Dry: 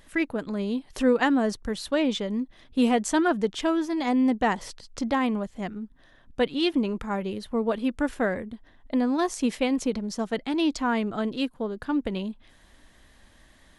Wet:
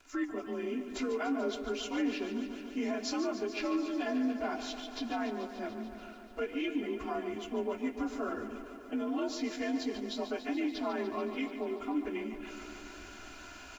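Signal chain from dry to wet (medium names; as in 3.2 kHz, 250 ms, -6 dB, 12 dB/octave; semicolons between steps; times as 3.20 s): frequency axis rescaled in octaves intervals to 89%; bass shelf 200 Hz -9 dB; comb 2.9 ms, depth 91%; in parallel at +2 dB: compression, threshold -37 dBFS, peak gain reduction 18.5 dB; on the sum: peak limiter -17.5 dBFS, peak gain reduction 7.5 dB; reverse; upward compressor, threshold -28 dBFS; reverse; crossover distortion -59 dBFS; flange 0.57 Hz, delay 7 ms, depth 9.5 ms, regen +84%; bit-crushed delay 145 ms, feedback 80%, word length 10-bit, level -11 dB; trim -4 dB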